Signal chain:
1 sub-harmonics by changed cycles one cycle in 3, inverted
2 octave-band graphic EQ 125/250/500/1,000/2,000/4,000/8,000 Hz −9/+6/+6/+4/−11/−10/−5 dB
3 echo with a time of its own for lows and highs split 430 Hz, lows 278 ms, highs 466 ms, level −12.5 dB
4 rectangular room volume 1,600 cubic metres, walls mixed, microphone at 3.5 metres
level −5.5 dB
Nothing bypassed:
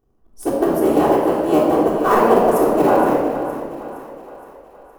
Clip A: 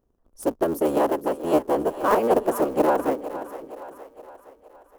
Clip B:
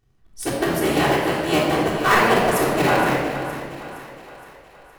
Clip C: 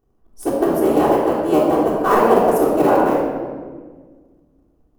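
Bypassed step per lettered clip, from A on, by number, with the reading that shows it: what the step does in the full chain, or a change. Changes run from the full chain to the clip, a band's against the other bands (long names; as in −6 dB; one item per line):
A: 4, echo-to-direct ratio 6.0 dB to −11.0 dB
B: 2, change in momentary loudness spread +2 LU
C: 3, change in momentary loudness spread −1 LU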